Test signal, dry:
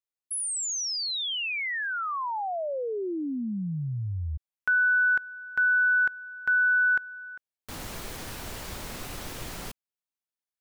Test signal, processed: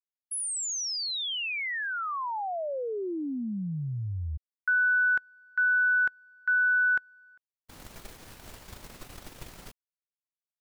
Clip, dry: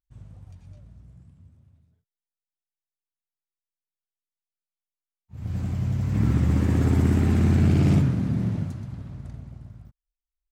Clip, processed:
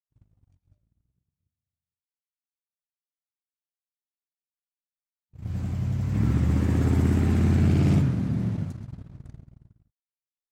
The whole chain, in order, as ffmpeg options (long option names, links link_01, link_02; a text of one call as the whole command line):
ffmpeg -i in.wav -af "agate=range=-33dB:threshold=-35dB:ratio=3:release=22:detection=peak,volume=-1.5dB" out.wav